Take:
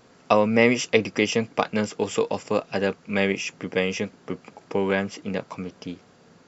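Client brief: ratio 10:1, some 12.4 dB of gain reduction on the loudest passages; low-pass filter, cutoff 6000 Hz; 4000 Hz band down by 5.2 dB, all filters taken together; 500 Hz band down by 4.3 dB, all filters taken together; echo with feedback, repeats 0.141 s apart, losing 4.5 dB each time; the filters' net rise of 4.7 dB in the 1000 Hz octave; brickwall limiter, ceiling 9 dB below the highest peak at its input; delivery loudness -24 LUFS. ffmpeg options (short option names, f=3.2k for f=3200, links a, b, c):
-af "lowpass=6k,equalizer=f=500:t=o:g=-7,equalizer=f=1k:t=o:g=8.5,equalizer=f=4k:t=o:g=-8,acompressor=threshold=-26dB:ratio=10,alimiter=limit=-19.5dB:level=0:latency=1,aecho=1:1:141|282|423|564|705|846|987|1128|1269:0.596|0.357|0.214|0.129|0.0772|0.0463|0.0278|0.0167|0.01,volume=9dB"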